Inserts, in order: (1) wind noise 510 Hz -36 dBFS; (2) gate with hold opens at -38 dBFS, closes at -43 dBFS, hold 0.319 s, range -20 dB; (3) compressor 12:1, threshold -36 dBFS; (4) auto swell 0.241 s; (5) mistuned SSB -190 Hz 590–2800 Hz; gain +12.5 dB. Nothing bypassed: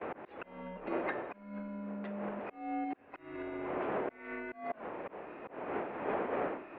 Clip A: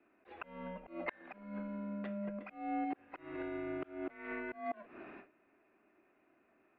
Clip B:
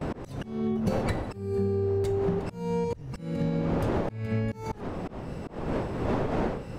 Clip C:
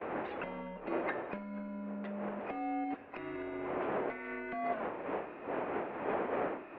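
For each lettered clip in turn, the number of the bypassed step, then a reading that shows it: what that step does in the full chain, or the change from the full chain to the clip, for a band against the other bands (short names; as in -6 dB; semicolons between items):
1, 500 Hz band -4.0 dB; 5, 125 Hz band +13.5 dB; 4, momentary loudness spread change -4 LU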